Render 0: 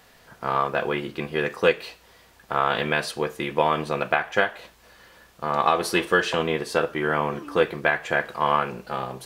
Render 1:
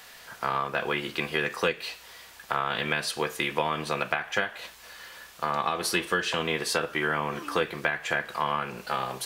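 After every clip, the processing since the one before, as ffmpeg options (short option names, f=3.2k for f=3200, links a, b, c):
-filter_complex "[0:a]tiltshelf=f=730:g=-7,acrossover=split=310[a][b];[b]acompressor=threshold=-27dB:ratio=6[c];[a][c]amix=inputs=2:normalize=0,volume=2dB"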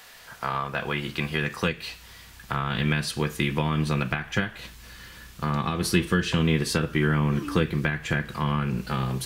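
-af "asubboost=boost=12:cutoff=190"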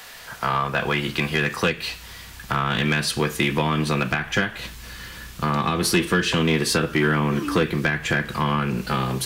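-filter_complex "[0:a]acrossover=split=210[a][b];[a]acompressor=threshold=-35dB:ratio=6[c];[c][b]amix=inputs=2:normalize=0,asoftclip=type=tanh:threshold=-17.5dB,volume=7dB"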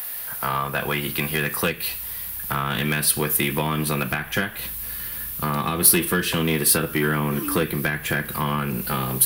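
-af "aexciter=amount=14.5:drive=2.5:freq=9.7k,volume=-2dB"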